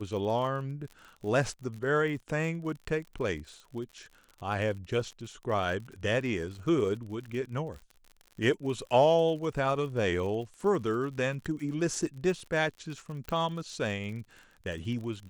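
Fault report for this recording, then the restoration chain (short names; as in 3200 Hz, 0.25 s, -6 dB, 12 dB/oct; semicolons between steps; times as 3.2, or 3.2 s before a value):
crackle 52/s -39 dBFS
13.29 pop -21 dBFS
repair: de-click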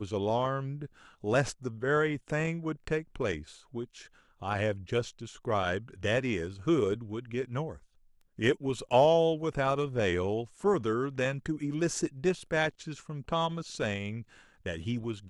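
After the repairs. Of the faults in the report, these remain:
none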